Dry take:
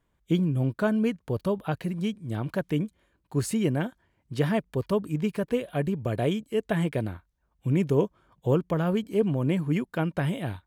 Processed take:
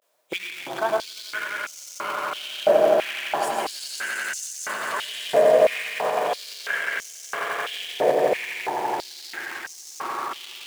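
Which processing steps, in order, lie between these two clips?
tape stop at the end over 2.94 s; high shelf 10000 Hz -8 dB; swelling echo 86 ms, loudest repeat 8, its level -5 dB; on a send at -1.5 dB: reverb RT60 0.50 s, pre-delay 97 ms; on the sum: requantised 12-bit, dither triangular; vibrato 0.39 Hz 80 cents; in parallel at -5.5 dB: companded quantiser 4-bit; on the sum: limiter -12.5 dBFS, peak gain reduction 11 dB; stepped high-pass 3 Hz 600–6100 Hz

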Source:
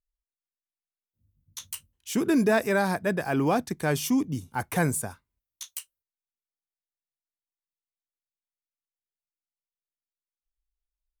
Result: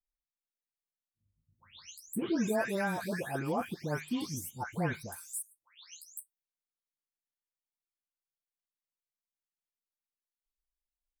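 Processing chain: spectral delay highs late, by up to 0.407 s; gain -7 dB

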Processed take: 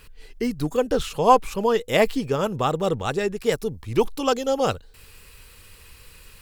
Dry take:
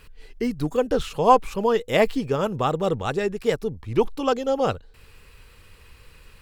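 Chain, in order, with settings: high shelf 4500 Hz +6 dB, from 3.52 s +12 dB

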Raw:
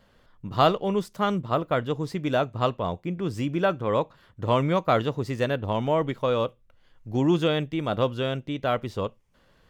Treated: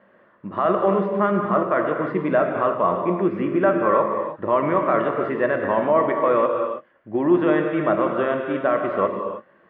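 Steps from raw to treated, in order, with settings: dynamic EQ 1300 Hz, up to +6 dB, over -38 dBFS, Q 1; limiter -17.5 dBFS, peak gain reduction 13.5 dB; speaker cabinet 200–2400 Hz, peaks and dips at 200 Hz +6 dB, 350 Hz +9 dB, 600 Hz +9 dB, 1100 Hz +7 dB, 1800 Hz +8 dB; non-linear reverb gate 0.35 s flat, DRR 2.5 dB; gain +1 dB

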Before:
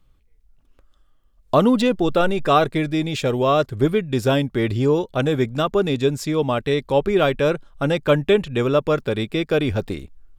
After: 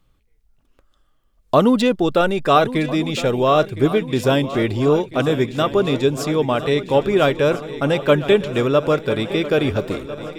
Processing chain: low shelf 88 Hz -7 dB; swung echo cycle 1.35 s, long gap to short 3:1, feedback 59%, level -14.5 dB; gain +2 dB

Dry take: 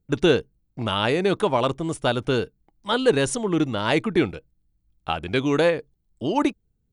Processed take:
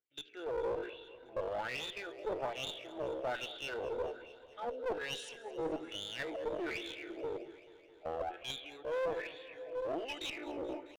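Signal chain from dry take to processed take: shoebox room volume 1400 m³, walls mixed, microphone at 0.75 m; wah 1.9 Hz 480–3600 Hz, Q 6.4; in parallel at -0.5 dB: level quantiser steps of 11 dB; on the sum: tilt -1.5 dB/oct; fixed phaser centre 440 Hz, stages 4; soft clip -18 dBFS, distortion -8 dB; HPF 150 Hz 12 dB/oct; reverse; compressor 6:1, threshold -43 dBFS, peak gain reduction 21.5 dB; reverse; tempo 0.63×; one-sided clip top -48 dBFS; dynamic EQ 740 Hz, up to +4 dB, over -55 dBFS, Q 0.8; warbling echo 0.216 s, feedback 73%, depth 71 cents, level -19 dB; gain +7 dB

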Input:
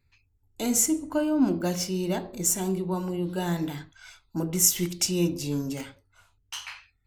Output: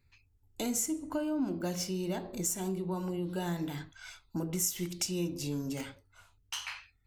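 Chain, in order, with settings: compressor 2.5:1, threshold -34 dBFS, peak gain reduction 12.5 dB

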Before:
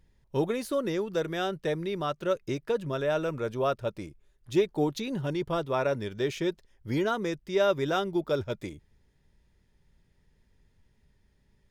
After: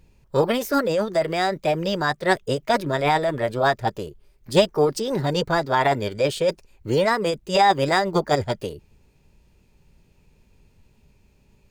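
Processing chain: formant shift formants +5 st; gain +8 dB

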